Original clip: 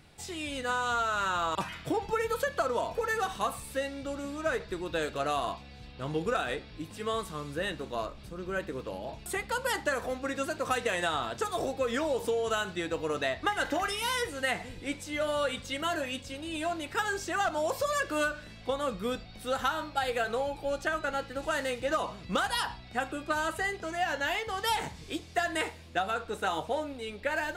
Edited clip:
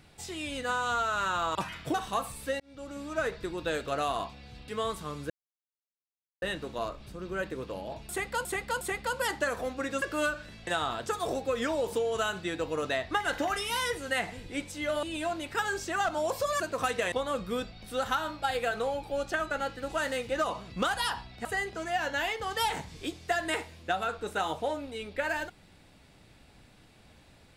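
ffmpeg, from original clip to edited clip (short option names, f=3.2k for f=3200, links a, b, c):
-filter_complex "[0:a]asplit=13[a][b][c][d][e][f][g][h][i][j][k][l][m];[a]atrim=end=1.942[n];[b]atrim=start=3.218:end=3.88,asetpts=PTS-STARTPTS,afade=t=out:st=0.658:d=0.004:c=hsin[o];[c]atrim=start=3.88:end=5.962,asetpts=PTS-STARTPTS,afade=t=in:d=0.73:c=qsin[p];[d]atrim=start=6.968:end=7.59,asetpts=PTS-STARTPTS,afade=t=out:st=0.618:d=0.004:c=hsin,apad=pad_dur=1.12[q];[e]atrim=start=7.59:end=9.622,asetpts=PTS-STARTPTS,afade=t=in:d=0.004:c=hsin[r];[f]atrim=start=9.258:end=9.622[s];[g]atrim=start=9.258:end=10.472[t];[h]atrim=start=17.998:end=18.652[u];[i]atrim=start=10.988:end=15.352[v];[j]atrim=start=16.428:end=18.002[w];[k]atrim=start=10.468:end=10.992[x];[l]atrim=start=18.648:end=22.982[y];[m]atrim=start=23.518[z];[o][p]concat=n=2:v=0:a=1[aa];[n][aa]acrossfade=d=0.004:c1=hsin:c2=hsin[ab];[q][r]concat=n=2:v=0:a=1[ac];[ab][ac]acrossfade=d=0.004:c1=hsin:c2=hsin[ad];[ad][s]acrossfade=d=0.004:c1=hsin:c2=hsin[ae];[ae][t]acrossfade=d=0.004:c1=hsin:c2=hsin[af];[af][u]acrossfade=d=0.004:c1=hsin:c2=hsin[ag];[ag][v]acrossfade=d=0.004:c1=hsin:c2=hsin[ah];[ah][w]acrossfade=d=0.004:c1=hsin:c2=hsin[ai];[ai][x]acrossfade=d=0.004:c1=hsin:c2=hsin[aj];[aj][y]acrossfade=d=0.004:c1=hsin:c2=hsin[ak];[ak][z]acrossfade=d=0.004:c1=hsin:c2=hsin"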